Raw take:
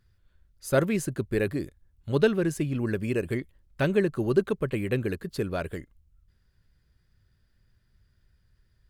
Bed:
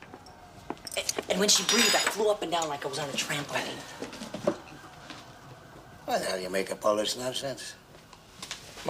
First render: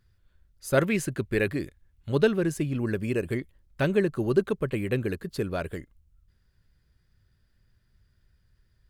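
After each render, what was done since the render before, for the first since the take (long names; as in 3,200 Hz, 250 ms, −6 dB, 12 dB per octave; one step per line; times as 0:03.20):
0:00.77–0:02.10: parametric band 2,300 Hz +6 dB 1.5 octaves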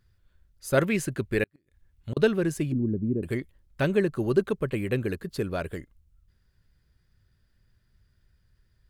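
0:01.43–0:02.17: gate with flip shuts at −20 dBFS, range −42 dB
0:02.72–0:03.23: low-pass with resonance 270 Hz, resonance Q 1.5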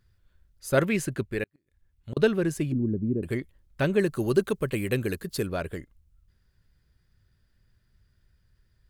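0:01.23–0:02.13: clip gain −4.5 dB
0:03.99–0:05.47: high-shelf EQ 4,200 Hz +11 dB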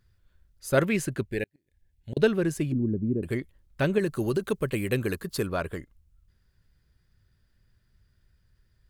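0:01.29–0:02.22: Butterworth band-reject 1,200 Hz, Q 1.8
0:03.98–0:04.43: downward compressor, threshold −21 dBFS
0:05.00–0:05.79: parametric band 1,100 Hz +6.5 dB 0.73 octaves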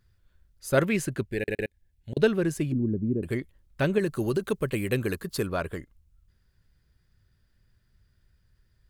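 0:01.37: stutter in place 0.11 s, 3 plays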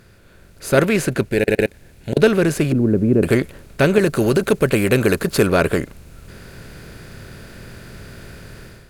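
compressor on every frequency bin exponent 0.6
automatic gain control gain up to 12 dB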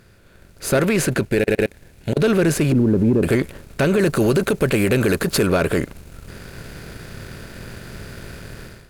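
leveller curve on the samples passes 1
brickwall limiter −9.5 dBFS, peak gain reduction 8 dB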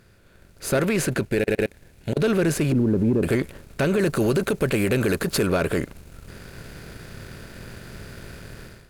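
level −4 dB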